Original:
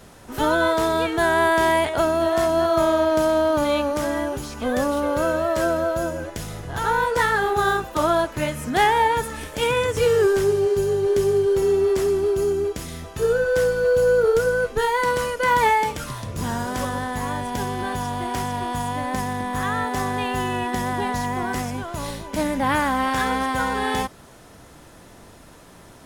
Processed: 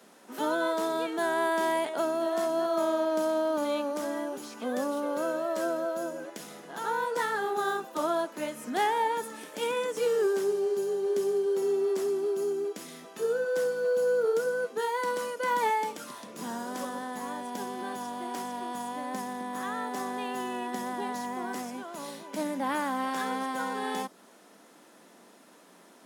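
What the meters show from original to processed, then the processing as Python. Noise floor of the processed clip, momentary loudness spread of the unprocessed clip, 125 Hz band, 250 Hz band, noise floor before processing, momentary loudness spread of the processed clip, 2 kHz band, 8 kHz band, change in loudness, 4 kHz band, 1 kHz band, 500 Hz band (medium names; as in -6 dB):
-56 dBFS, 9 LU, under -20 dB, -8.5 dB, -47 dBFS, 9 LU, -11.0 dB, -8.5 dB, -8.5 dB, -10.0 dB, -9.0 dB, -8.0 dB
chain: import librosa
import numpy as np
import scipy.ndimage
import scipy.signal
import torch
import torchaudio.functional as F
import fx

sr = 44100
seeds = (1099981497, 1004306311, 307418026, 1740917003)

y = scipy.signal.sosfilt(scipy.signal.butter(8, 190.0, 'highpass', fs=sr, output='sos'), x)
y = fx.dynamic_eq(y, sr, hz=2200.0, q=1.0, threshold_db=-38.0, ratio=4.0, max_db=-4)
y = y * librosa.db_to_amplitude(-8.0)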